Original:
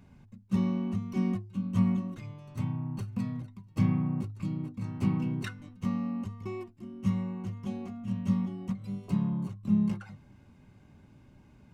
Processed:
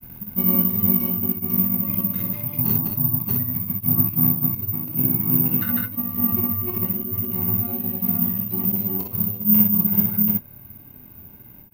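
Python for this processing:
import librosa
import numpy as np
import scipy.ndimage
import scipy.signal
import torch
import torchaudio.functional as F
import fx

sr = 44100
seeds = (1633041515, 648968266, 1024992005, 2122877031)

p1 = fx.auto_swell(x, sr, attack_ms=240.0)
p2 = fx.granulator(p1, sr, seeds[0], grain_ms=100.0, per_s=20.0, spray_ms=389.0, spread_st=0)
p3 = fx.rider(p2, sr, range_db=10, speed_s=2.0)
p4 = p3 + fx.room_early_taps(p3, sr, ms=(24, 53, 63), db=(-7.0, -7.0, -5.5), dry=0)
p5 = (np.kron(scipy.signal.resample_poly(p4, 1, 3), np.eye(3)[0]) * 3)[:len(p4)]
y = F.gain(torch.from_numpy(p5), 8.0).numpy()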